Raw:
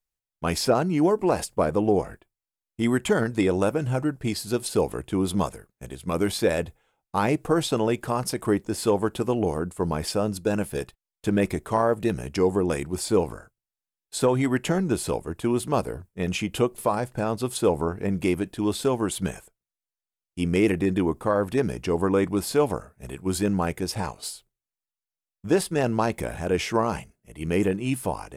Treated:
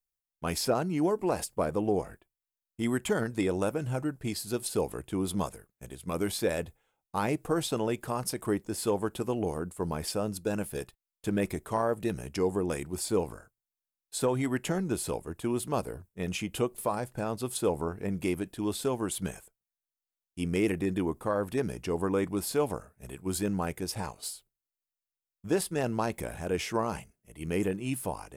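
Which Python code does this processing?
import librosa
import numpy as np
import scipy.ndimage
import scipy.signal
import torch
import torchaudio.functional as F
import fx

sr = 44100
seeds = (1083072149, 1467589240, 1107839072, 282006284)

y = fx.high_shelf(x, sr, hz=10000.0, db=9.0)
y = F.gain(torch.from_numpy(y), -6.5).numpy()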